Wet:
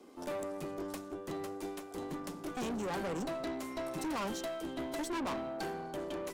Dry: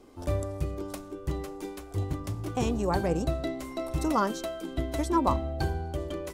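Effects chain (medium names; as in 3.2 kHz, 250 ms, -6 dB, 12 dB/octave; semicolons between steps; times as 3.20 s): steep high-pass 170 Hz 48 dB/octave; valve stage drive 35 dB, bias 0.55; trim +1 dB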